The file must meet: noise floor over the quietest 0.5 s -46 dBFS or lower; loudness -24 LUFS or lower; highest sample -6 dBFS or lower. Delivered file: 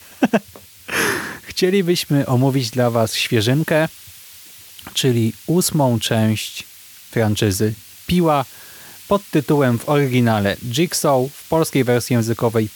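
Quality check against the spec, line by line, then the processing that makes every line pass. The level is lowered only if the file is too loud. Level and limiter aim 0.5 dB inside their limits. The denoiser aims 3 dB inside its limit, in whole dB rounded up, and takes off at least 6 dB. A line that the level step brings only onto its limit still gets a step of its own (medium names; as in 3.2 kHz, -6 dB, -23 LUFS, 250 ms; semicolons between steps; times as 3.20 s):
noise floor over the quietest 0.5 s -42 dBFS: fail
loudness -18.5 LUFS: fail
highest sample -4.0 dBFS: fail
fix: trim -6 dB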